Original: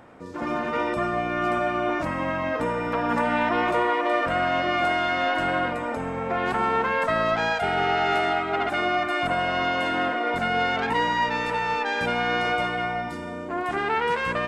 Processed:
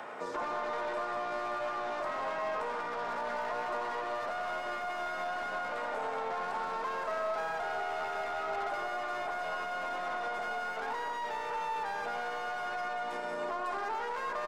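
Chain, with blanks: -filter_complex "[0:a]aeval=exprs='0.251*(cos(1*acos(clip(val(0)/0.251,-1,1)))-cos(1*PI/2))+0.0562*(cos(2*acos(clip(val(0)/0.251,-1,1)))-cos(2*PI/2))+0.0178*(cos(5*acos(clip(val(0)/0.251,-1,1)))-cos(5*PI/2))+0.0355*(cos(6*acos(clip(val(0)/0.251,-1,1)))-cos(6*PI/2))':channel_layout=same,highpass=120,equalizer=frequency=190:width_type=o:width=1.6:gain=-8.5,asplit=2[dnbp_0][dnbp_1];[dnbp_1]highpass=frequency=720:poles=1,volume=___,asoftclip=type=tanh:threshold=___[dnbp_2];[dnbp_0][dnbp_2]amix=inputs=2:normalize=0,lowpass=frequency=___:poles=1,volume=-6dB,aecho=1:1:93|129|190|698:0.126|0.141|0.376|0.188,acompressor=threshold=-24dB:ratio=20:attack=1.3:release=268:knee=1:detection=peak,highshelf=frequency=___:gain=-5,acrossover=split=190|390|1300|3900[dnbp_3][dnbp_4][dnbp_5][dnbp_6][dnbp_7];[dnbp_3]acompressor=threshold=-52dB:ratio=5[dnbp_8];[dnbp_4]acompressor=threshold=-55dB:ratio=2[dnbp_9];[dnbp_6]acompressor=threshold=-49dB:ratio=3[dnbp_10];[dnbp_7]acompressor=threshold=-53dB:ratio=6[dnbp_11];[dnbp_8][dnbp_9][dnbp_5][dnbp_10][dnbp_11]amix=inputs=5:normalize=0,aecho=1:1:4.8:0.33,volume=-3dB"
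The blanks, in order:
17dB, -11.5dB, 6900, 4300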